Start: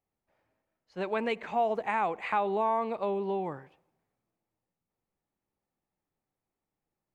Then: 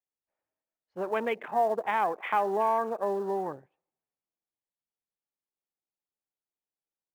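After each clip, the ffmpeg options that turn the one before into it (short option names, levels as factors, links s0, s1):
-filter_complex "[0:a]afwtdn=0.0126,bass=f=250:g=-8,treble=f=4000:g=-12,asplit=2[s0][s1];[s1]acrusher=bits=4:mode=log:mix=0:aa=0.000001,volume=0.282[s2];[s0][s2]amix=inputs=2:normalize=0"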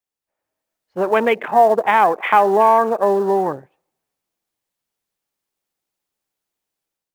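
-af "dynaudnorm=f=360:g=3:m=2.51,volume=1.88"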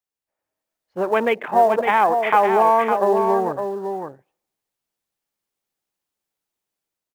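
-af "aecho=1:1:559:0.473,volume=0.708"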